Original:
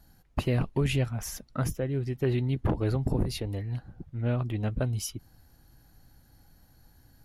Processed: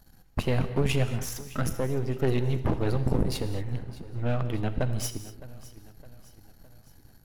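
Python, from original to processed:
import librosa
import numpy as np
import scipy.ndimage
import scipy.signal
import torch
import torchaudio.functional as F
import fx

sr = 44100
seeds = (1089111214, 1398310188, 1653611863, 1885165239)

p1 = np.where(x < 0.0, 10.0 ** (-12.0 / 20.0) * x, x)
p2 = p1 + fx.echo_feedback(p1, sr, ms=612, feedback_pct=50, wet_db=-18.5, dry=0)
p3 = fx.rev_gated(p2, sr, seeds[0], gate_ms=260, shape='flat', drr_db=10.0)
y = p3 * 10.0 ** (4.5 / 20.0)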